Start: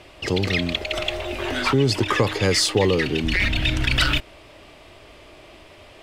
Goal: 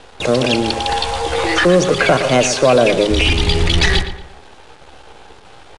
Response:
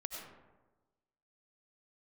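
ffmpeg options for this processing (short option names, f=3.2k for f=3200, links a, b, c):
-filter_complex "[0:a]aemphasis=mode=reproduction:type=75kf,asplit=2[a][b];[b]adynamicsmooth=sensitivity=4:basefreq=5.2k,volume=-1.5dB[c];[a][c]amix=inputs=2:normalize=0,equalizer=f=100:t=o:w=0.81:g=-7.5,acontrast=61,asetrate=55563,aresample=44100,atempo=0.793701,bandreject=f=50:t=h:w=6,bandreject=f=100:t=h:w=6,bandreject=f=150:t=h:w=6,bandreject=f=200:t=h:w=6,acrusher=bits=5:dc=4:mix=0:aa=0.000001,asplit=2[d][e];[e]adelay=120,lowpass=f=3k:p=1,volume=-10dB,asplit=2[f][g];[g]adelay=120,lowpass=f=3k:p=1,volume=0.37,asplit=2[h][i];[i]adelay=120,lowpass=f=3k:p=1,volume=0.37,asplit=2[j][k];[k]adelay=120,lowpass=f=3k:p=1,volume=0.37[l];[f][h][j][l]amix=inputs=4:normalize=0[m];[d][m]amix=inputs=2:normalize=0,asetrate=45938,aresample=44100,aresample=22050,aresample=44100,volume=-1.5dB"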